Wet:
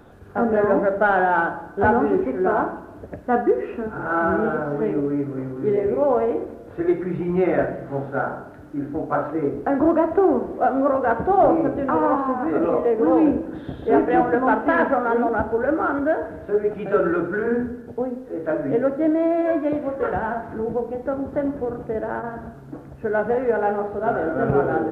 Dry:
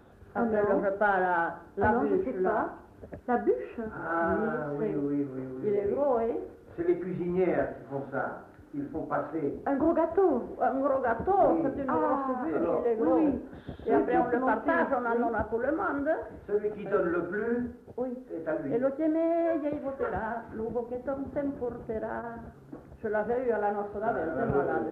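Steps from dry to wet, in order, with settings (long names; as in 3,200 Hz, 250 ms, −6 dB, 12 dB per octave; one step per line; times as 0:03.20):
convolution reverb RT60 1.2 s, pre-delay 7 ms, DRR 11 dB
level +7.5 dB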